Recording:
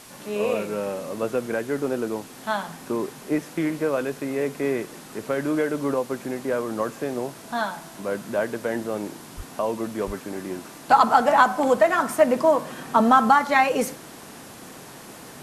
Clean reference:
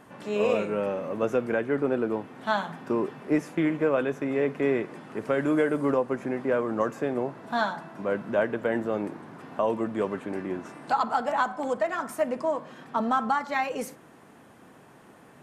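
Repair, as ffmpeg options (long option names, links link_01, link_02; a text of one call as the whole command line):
ffmpeg -i in.wav -filter_complex "[0:a]asplit=3[link_01][link_02][link_03];[link_01]afade=type=out:start_time=9.36:duration=0.02[link_04];[link_02]highpass=frequency=140:width=0.5412,highpass=frequency=140:width=1.3066,afade=type=in:start_time=9.36:duration=0.02,afade=type=out:start_time=9.48:duration=0.02[link_05];[link_03]afade=type=in:start_time=9.48:duration=0.02[link_06];[link_04][link_05][link_06]amix=inputs=3:normalize=0,asplit=3[link_07][link_08][link_09];[link_07]afade=type=out:start_time=10.06:duration=0.02[link_10];[link_08]highpass=frequency=140:width=0.5412,highpass=frequency=140:width=1.3066,afade=type=in:start_time=10.06:duration=0.02,afade=type=out:start_time=10.18:duration=0.02[link_11];[link_09]afade=type=in:start_time=10.18:duration=0.02[link_12];[link_10][link_11][link_12]amix=inputs=3:normalize=0,afwtdn=0.0056,asetnsamples=nb_out_samples=441:pad=0,asendcmd='10.9 volume volume -9dB',volume=0dB" out.wav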